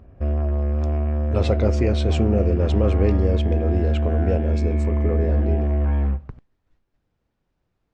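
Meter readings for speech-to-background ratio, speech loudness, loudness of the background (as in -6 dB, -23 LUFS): -2.5 dB, -25.0 LUFS, -22.5 LUFS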